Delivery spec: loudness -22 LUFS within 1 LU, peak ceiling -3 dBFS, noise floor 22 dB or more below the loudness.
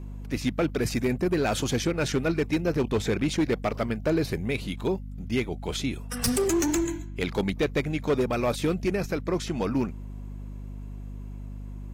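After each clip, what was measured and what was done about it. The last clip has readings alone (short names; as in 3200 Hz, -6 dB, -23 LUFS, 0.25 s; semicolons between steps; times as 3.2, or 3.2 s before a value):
clipped 1.2%; flat tops at -18.5 dBFS; hum 50 Hz; harmonics up to 250 Hz; hum level -35 dBFS; loudness -27.5 LUFS; peak -18.5 dBFS; loudness target -22.0 LUFS
-> clip repair -18.5 dBFS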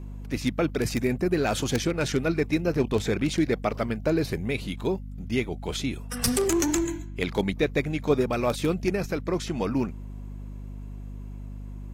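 clipped 0.0%; hum 50 Hz; harmonics up to 250 Hz; hum level -35 dBFS
-> de-hum 50 Hz, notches 5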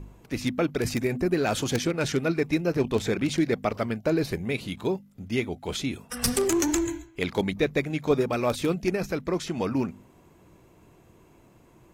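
hum none; loudness -27.5 LUFS; peak -9.0 dBFS; loudness target -22.0 LUFS
-> gain +5.5 dB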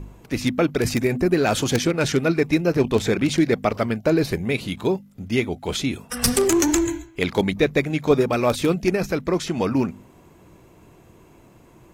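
loudness -22.0 LUFS; peak -3.5 dBFS; noise floor -51 dBFS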